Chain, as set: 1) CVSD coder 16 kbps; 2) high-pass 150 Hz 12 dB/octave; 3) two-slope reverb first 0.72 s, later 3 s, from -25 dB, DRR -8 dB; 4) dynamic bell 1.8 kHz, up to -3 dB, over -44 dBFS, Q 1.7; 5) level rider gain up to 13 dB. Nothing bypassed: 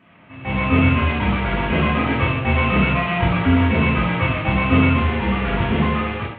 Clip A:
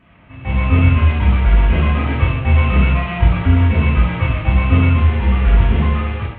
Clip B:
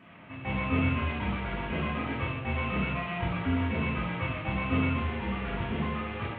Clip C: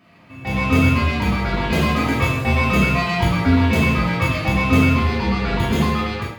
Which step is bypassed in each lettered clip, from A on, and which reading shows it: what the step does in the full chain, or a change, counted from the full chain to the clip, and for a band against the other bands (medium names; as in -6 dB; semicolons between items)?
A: 2, 125 Hz band +9.0 dB; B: 5, loudness change -12.0 LU; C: 1, 4 kHz band +2.0 dB